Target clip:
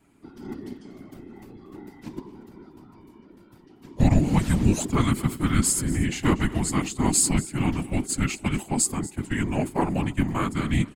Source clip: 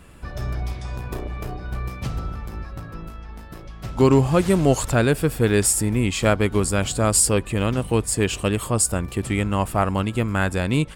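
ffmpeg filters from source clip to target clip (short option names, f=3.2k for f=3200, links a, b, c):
-filter_complex "[0:a]agate=range=-11dB:threshold=-24dB:ratio=16:detection=peak,afreqshift=-350,afftfilt=real='hypot(re,im)*cos(2*PI*random(0))':imag='hypot(re,im)*sin(2*PI*random(1))':win_size=512:overlap=0.75,asplit=2[a][b];[b]aecho=0:1:238:0.126[c];[a][c]amix=inputs=2:normalize=0,volume=3dB"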